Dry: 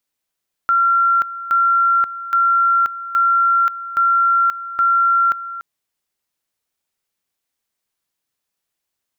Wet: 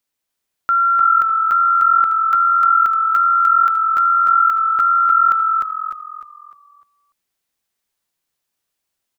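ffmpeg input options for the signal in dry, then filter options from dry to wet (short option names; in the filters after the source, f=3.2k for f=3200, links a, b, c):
-f lavfi -i "aevalsrc='pow(10,(-11.5-14.5*gte(mod(t,0.82),0.53))/20)*sin(2*PI*1370*t)':d=4.92:s=44100"
-filter_complex "[0:a]asplit=6[a][b][c][d][e][f];[b]adelay=302,afreqshift=-43,volume=-3dB[g];[c]adelay=604,afreqshift=-86,volume=-11.2dB[h];[d]adelay=906,afreqshift=-129,volume=-19.4dB[i];[e]adelay=1208,afreqshift=-172,volume=-27.5dB[j];[f]adelay=1510,afreqshift=-215,volume=-35.7dB[k];[a][g][h][i][j][k]amix=inputs=6:normalize=0"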